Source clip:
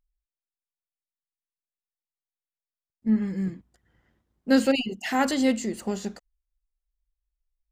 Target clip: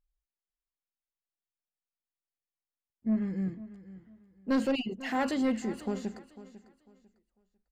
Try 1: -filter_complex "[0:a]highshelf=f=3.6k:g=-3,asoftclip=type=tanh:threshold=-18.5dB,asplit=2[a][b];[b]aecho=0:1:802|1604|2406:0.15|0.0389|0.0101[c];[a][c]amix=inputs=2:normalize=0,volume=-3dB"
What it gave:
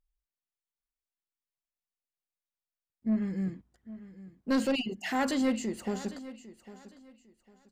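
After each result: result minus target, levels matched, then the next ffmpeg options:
echo 0.304 s late; 8000 Hz band +6.0 dB
-filter_complex "[0:a]highshelf=f=3.6k:g=-3,asoftclip=type=tanh:threshold=-18.5dB,asplit=2[a][b];[b]aecho=0:1:498|996|1494:0.15|0.0389|0.0101[c];[a][c]amix=inputs=2:normalize=0,volume=-3dB"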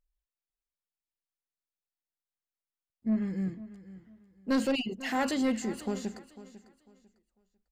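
8000 Hz band +6.0 dB
-filter_complex "[0:a]highshelf=f=3.6k:g=-11,asoftclip=type=tanh:threshold=-18.5dB,asplit=2[a][b];[b]aecho=0:1:498|996|1494:0.15|0.0389|0.0101[c];[a][c]amix=inputs=2:normalize=0,volume=-3dB"

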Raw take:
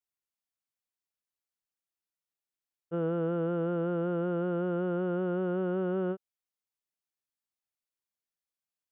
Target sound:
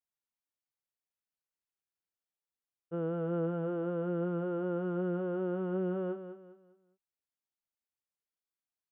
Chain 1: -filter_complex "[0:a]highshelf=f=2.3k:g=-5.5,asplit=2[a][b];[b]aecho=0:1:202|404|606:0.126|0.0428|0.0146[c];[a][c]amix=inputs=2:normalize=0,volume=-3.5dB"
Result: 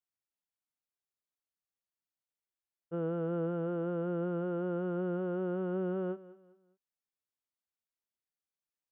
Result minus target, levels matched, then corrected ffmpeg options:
echo-to-direct -8 dB
-filter_complex "[0:a]highshelf=f=2.3k:g=-5.5,asplit=2[a][b];[b]aecho=0:1:202|404|606|808:0.316|0.108|0.0366|0.0124[c];[a][c]amix=inputs=2:normalize=0,volume=-3.5dB"

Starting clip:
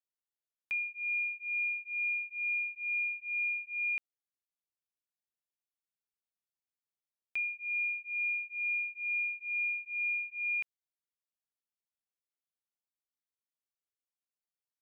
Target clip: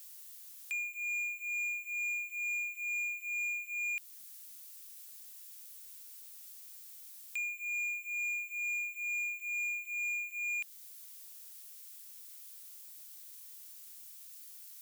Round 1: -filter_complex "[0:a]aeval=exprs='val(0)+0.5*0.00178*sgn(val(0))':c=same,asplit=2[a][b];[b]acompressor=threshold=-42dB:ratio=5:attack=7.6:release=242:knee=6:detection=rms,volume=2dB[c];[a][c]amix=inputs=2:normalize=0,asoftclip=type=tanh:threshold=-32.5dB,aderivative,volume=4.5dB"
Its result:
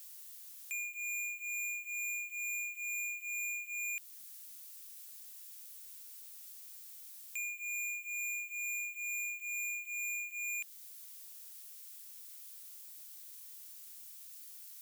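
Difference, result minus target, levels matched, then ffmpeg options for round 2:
soft clip: distortion +11 dB
-filter_complex "[0:a]aeval=exprs='val(0)+0.5*0.00178*sgn(val(0))':c=same,asplit=2[a][b];[b]acompressor=threshold=-42dB:ratio=5:attack=7.6:release=242:knee=6:detection=rms,volume=2dB[c];[a][c]amix=inputs=2:normalize=0,asoftclip=type=tanh:threshold=-24.5dB,aderivative,volume=4.5dB"

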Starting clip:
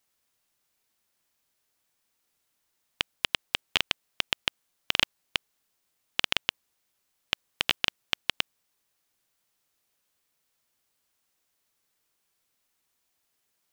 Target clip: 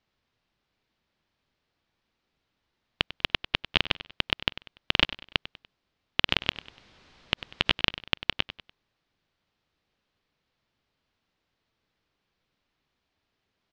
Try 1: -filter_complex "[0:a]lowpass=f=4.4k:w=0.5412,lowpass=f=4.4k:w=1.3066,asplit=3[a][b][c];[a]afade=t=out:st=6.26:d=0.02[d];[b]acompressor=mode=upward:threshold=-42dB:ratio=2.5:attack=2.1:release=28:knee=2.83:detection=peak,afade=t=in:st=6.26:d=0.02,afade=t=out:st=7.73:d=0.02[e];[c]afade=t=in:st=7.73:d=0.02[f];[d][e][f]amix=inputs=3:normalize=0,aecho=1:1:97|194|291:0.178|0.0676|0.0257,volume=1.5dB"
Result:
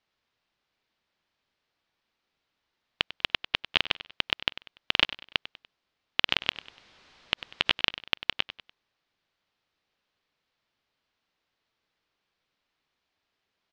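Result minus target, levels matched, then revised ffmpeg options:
250 Hz band -6.0 dB
-filter_complex "[0:a]lowpass=f=4.4k:w=0.5412,lowpass=f=4.4k:w=1.3066,lowshelf=f=330:g=10,asplit=3[a][b][c];[a]afade=t=out:st=6.26:d=0.02[d];[b]acompressor=mode=upward:threshold=-42dB:ratio=2.5:attack=2.1:release=28:knee=2.83:detection=peak,afade=t=in:st=6.26:d=0.02,afade=t=out:st=7.73:d=0.02[e];[c]afade=t=in:st=7.73:d=0.02[f];[d][e][f]amix=inputs=3:normalize=0,aecho=1:1:97|194|291:0.178|0.0676|0.0257,volume=1.5dB"

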